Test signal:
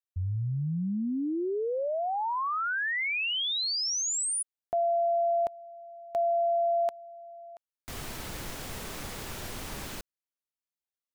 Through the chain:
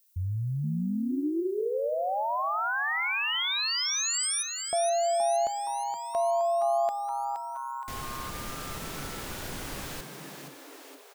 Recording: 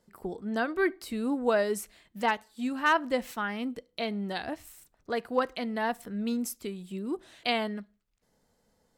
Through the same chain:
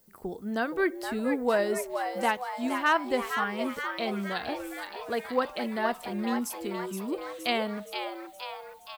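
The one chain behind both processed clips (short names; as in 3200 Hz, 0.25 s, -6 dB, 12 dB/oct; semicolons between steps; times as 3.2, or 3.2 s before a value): added noise violet -65 dBFS; frequency-shifting echo 0.47 s, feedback 60%, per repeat +130 Hz, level -7 dB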